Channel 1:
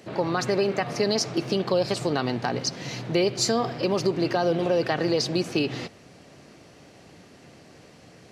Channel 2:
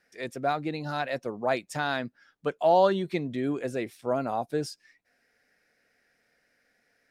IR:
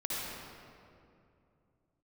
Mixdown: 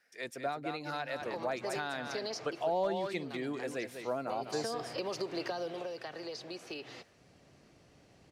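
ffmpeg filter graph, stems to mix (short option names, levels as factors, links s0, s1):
-filter_complex "[0:a]acrossover=split=380|3700[s0][s1][s2];[s0]acompressor=threshold=0.00282:ratio=4[s3];[s1]acompressor=threshold=0.0398:ratio=4[s4];[s2]acompressor=threshold=0.0158:ratio=4[s5];[s3][s4][s5]amix=inputs=3:normalize=0,lowshelf=f=100:g=11,adelay=1150,volume=1.5,afade=t=out:st=2.42:d=0.57:silence=0.334965,afade=t=in:st=4.26:d=0.23:silence=0.266073,afade=t=out:st=5.51:d=0.44:silence=0.473151[s6];[1:a]lowshelf=f=400:g=-11.5,asoftclip=type=hard:threshold=0.15,volume=0.841,asplit=3[s7][s8][s9];[s8]volume=0.376[s10];[s9]apad=whole_len=417539[s11];[s6][s11]sidechaincompress=threshold=0.0178:ratio=8:attack=5.8:release=130[s12];[s10]aecho=0:1:199:1[s13];[s12][s7][s13]amix=inputs=3:normalize=0,acrossover=split=490[s14][s15];[s15]acompressor=threshold=0.0178:ratio=6[s16];[s14][s16]amix=inputs=2:normalize=0"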